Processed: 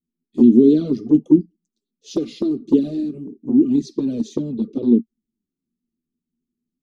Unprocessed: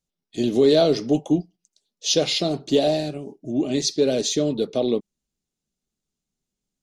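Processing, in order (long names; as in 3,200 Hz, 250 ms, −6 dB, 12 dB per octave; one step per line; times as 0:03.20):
low shelf with overshoot 500 Hz +13 dB, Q 3
hollow resonant body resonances 230/1,200 Hz, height 14 dB, ringing for 75 ms
flanger swept by the level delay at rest 12 ms, full sweep at 7.5 dBFS
level −14.5 dB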